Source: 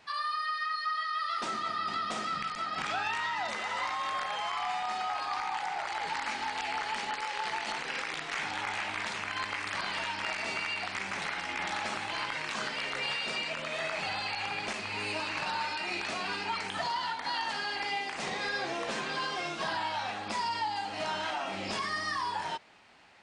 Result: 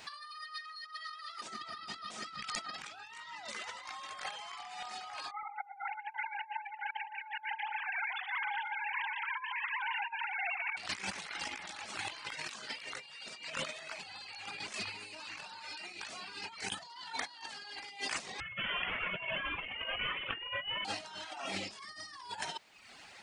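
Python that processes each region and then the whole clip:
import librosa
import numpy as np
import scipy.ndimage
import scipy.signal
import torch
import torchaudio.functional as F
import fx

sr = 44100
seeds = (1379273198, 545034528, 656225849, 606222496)

y = fx.chain(x, sr, fx.sine_speech(),
    fx.air_absorb(metres=170.0),
    fx.echo_single(ms=119, db=-5.5), at=(5.31, 10.77))
y = fx.chain(y, sr, fx.highpass(hz=1300.0, slope=12),
    fx.freq_invert(carrier_hz=3800), at=(18.4, 20.85))
y = fx.dereverb_blind(y, sr, rt60_s=0.75)
y = fx.high_shelf(y, sr, hz=3600.0, db=12.0)
y = fx.over_compress(y, sr, threshold_db=-39.0, ratio=-0.5)
y = y * librosa.db_to_amplitude(-1.5)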